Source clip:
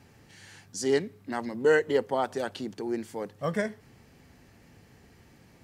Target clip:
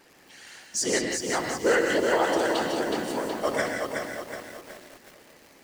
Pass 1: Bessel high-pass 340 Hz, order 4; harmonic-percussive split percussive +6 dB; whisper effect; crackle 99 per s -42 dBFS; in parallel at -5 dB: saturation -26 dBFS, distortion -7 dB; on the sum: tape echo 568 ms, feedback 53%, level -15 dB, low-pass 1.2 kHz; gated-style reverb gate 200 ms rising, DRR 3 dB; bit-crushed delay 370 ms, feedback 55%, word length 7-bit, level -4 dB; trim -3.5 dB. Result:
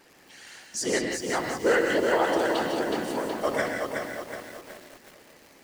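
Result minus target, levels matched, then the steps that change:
8 kHz band -3.5 dB
add after Bessel high-pass: dynamic bell 6.7 kHz, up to +5 dB, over -52 dBFS, Q 0.85

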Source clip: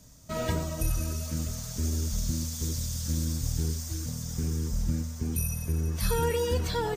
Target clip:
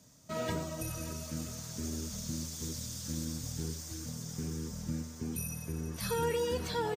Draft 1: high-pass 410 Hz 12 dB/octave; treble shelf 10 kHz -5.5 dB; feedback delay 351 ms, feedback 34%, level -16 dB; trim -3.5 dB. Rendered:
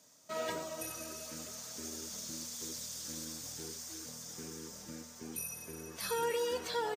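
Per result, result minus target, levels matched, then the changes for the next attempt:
125 Hz band -13.5 dB; echo 229 ms early
change: high-pass 130 Hz 12 dB/octave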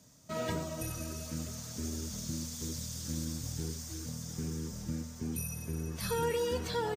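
echo 229 ms early
change: feedback delay 580 ms, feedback 34%, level -16 dB

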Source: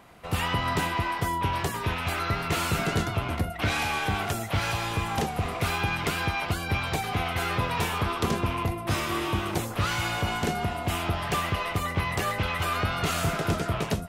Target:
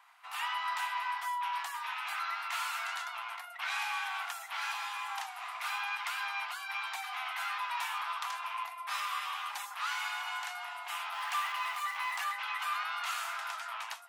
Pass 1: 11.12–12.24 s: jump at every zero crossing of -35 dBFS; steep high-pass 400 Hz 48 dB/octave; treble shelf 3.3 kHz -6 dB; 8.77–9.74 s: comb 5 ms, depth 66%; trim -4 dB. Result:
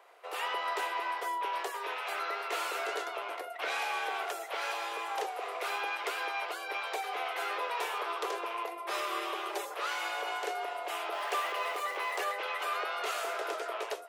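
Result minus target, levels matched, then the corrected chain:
500 Hz band +18.5 dB
11.12–12.24 s: jump at every zero crossing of -35 dBFS; steep high-pass 850 Hz 48 dB/octave; treble shelf 3.3 kHz -6 dB; 8.77–9.74 s: comb 5 ms, depth 66%; trim -4 dB

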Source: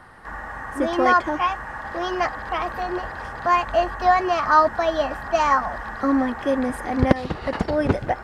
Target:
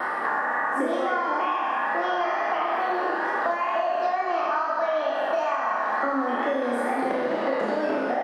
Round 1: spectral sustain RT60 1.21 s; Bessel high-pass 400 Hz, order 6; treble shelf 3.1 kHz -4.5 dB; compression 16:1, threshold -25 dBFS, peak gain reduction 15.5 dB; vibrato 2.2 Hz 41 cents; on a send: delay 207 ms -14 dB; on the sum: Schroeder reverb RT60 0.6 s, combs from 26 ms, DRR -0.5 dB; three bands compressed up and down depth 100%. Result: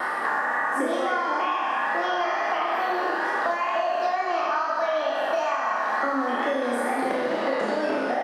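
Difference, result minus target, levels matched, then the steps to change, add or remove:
8 kHz band +6.5 dB
change: treble shelf 3.1 kHz -13.5 dB

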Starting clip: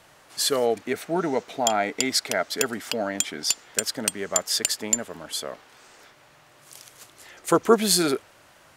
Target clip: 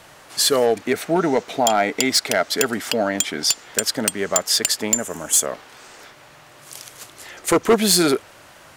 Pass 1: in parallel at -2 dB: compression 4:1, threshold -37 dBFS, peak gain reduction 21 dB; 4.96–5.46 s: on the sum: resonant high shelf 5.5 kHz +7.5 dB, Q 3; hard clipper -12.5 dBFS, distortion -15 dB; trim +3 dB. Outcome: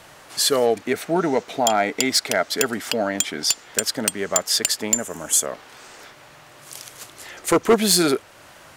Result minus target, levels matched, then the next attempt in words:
compression: peak gain reduction +8.5 dB
in parallel at -2 dB: compression 4:1, threshold -26 dBFS, peak gain reduction 12.5 dB; 4.96–5.46 s: on the sum: resonant high shelf 5.5 kHz +7.5 dB, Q 3; hard clipper -12.5 dBFS, distortion -13 dB; trim +3 dB

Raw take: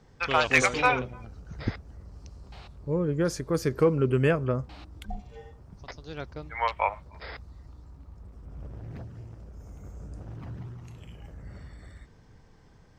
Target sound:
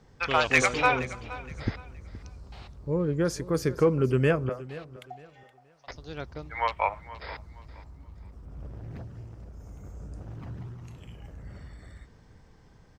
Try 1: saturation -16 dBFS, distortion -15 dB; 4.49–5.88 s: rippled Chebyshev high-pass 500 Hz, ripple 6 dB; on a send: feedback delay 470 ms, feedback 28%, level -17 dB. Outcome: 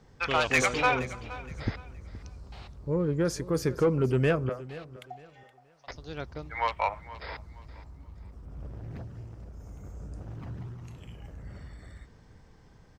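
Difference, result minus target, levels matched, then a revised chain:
saturation: distortion +18 dB
saturation -4.5 dBFS, distortion -34 dB; 4.49–5.88 s: rippled Chebyshev high-pass 500 Hz, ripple 6 dB; on a send: feedback delay 470 ms, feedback 28%, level -17 dB

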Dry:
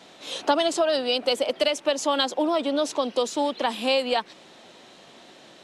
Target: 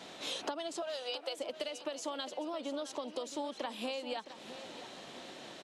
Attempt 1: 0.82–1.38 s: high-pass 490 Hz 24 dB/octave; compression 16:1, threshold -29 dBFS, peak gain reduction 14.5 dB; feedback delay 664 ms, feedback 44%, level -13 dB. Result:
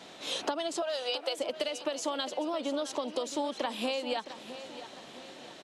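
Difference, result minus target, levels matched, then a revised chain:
compression: peak gain reduction -6 dB
0.82–1.38 s: high-pass 490 Hz 24 dB/octave; compression 16:1, threshold -35.5 dBFS, peak gain reduction 20.5 dB; feedback delay 664 ms, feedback 44%, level -13 dB

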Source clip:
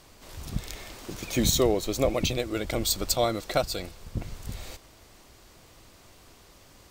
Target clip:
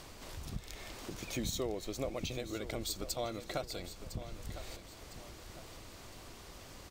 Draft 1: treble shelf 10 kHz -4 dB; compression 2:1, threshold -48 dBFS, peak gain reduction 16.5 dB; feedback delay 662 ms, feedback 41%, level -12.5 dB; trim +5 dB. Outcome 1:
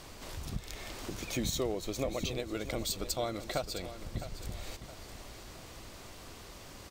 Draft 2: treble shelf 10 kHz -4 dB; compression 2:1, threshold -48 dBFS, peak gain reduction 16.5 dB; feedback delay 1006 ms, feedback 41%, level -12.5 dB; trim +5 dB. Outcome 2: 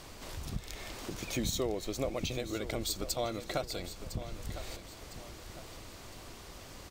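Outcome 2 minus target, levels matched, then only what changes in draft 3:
compression: peak gain reduction -3.5 dB
change: compression 2:1, threshold -55 dBFS, peak gain reduction 20 dB

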